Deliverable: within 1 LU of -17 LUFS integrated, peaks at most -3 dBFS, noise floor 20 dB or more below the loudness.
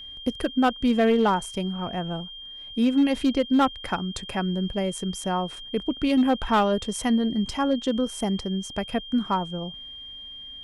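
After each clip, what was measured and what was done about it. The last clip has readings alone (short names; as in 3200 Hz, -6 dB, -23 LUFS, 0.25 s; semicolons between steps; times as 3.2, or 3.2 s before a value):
clipped 0.6%; flat tops at -14.5 dBFS; steady tone 3200 Hz; tone level -38 dBFS; loudness -25.0 LUFS; peak -14.5 dBFS; loudness target -17.0 LUFS
-> clip repair -14.5 dBFS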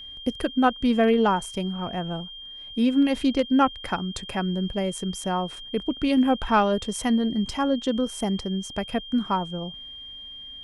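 clipped 0.0%; steady tone 3200 Hz; tone level -38 dBFS
-> notch 3200 Hz, Q 30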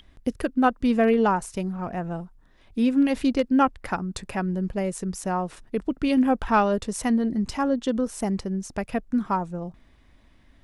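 steady tone none; loudness -25.0 LUFS; peak -8.0 dBFS; loudness target -17.0 LUFS
-> gain +8 dB; limiter -3 dBFS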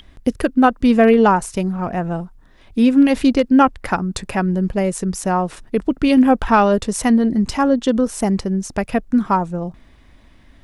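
loudness -17.0 LUFS; peak -3.0 dBFS; noise floor -49 dBFS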